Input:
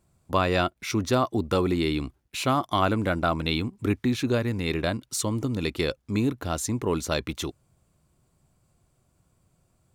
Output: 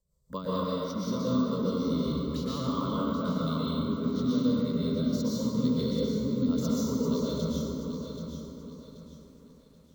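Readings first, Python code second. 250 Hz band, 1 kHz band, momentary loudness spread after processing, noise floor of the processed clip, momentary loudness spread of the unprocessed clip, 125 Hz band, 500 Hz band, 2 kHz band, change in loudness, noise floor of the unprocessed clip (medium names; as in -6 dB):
+1.0 dB, -9.0 dB, 11 LU, -57 dBFS, 5 LU, -3.5 dB, -4.5 dB, -18.5 dB, -3.0 dB, -70 dBFS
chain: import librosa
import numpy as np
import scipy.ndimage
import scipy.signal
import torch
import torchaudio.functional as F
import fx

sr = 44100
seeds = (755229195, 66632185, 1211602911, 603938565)

y = scipy.signal.sosfilt(scipy.signal.butter(2, 7000.0, 'lowpass', fs=sr, output='sos'), x)
y = fx.peak_eq(y, sr, hz=690.0, db=-8.5, octaves=0.8)
y = fx.rider(y, sr, range_db=10, speed_s=0.5)
y = fx.env_phaser(y, sr, low_hz=240.0, high_hz=1700.0, full_db=-33.0)
y = fx.fixed_phaser(y, sr, hz=510.0, stages=8)
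y = fx.rotary_switch(y, sr, hz=5.0, then_hz=0.85, switch_at_s=2.4)
y = fx.echo_filtered(y, sr, ms=390, feedback_pct=35, hz=1500.0, wet_db=-17)
y = fx.rev_plate(y, sr, seeds[0], rt60_s=2.5, hf_ratio=0.55, predelay_ms=105, drr_db=-7.5)
y = np.repeat(y[::2], 2)[:len(y)]
y = fx.echo_crushed(y, sr, ms=781, feedback_pct=35, bits=10, wet_db=-8.5)
y = y * librosa.db_to_amplitude(-4.0)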